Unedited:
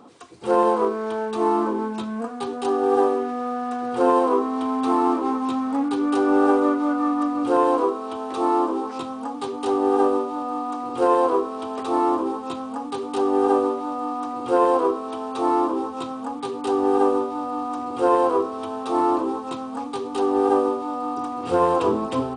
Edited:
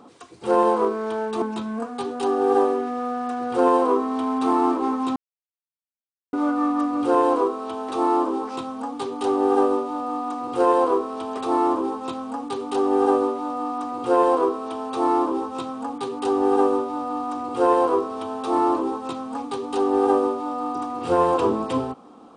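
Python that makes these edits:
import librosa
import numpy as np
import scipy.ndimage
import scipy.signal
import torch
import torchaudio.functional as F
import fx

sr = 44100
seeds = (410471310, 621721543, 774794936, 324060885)

y = fx.edit(x, sr, fx.cut(start_s=1.42, length_s=0.42),
    fx.silence(start_s=5.58, length_s=1.17), tone=tone)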